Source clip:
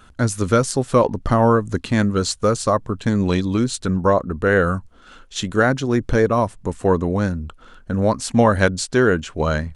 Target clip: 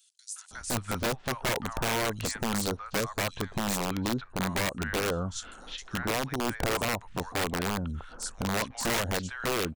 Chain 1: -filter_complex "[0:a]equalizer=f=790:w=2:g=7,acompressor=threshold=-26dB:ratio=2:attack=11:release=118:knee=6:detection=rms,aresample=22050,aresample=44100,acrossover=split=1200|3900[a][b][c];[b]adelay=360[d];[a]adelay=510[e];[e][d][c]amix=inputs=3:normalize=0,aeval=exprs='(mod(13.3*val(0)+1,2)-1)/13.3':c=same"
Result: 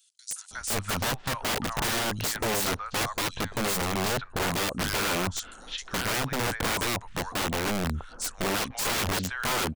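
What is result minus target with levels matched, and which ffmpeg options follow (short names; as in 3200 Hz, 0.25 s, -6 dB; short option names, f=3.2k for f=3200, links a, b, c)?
compressor: peak gain reduction -5 dB
-filter_complex "[0:a]equalizer=f=790:w=2:g=7,acompressor=threshold=-36dB:ratio=2:attack=11:release=118:knee=6:detection=rms,aresample=22050,aresample=44100,acrossover=split=1200|3900[a][b][c];[b]adelay=360[d];[a]adelay=510[e];[e][d][c]amix=inputs=3:normalize=0,aeval=exprs='(mod(13.3*val(0)+1,2)-1)/13.3':c=same"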